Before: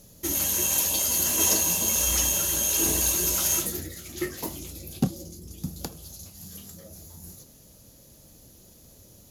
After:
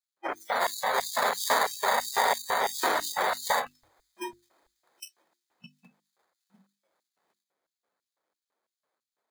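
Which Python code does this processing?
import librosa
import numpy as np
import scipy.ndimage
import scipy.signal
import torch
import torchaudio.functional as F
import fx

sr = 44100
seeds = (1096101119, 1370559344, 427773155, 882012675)

p1 = fx.sample_hold(x, sr, seeds[0], rate_hz=2800.0, jitter_pct=0)
p2 = p1 + fx.echo_feedback(p1, sr, ms=759, feedback_pct=56, wet_db=-15.0, dry=0)
p3 = fx.filter_lfo_highpass(p2, sr, shape='square', hz=3.0, low_hz=510.0, high_hz=4600.0, q=1.0)
p4 = fx.noise_reduce_blind(p3, sr, reduce_db=29)
y = fx.hum_notches(p4, sr, base_hz=50, count=7)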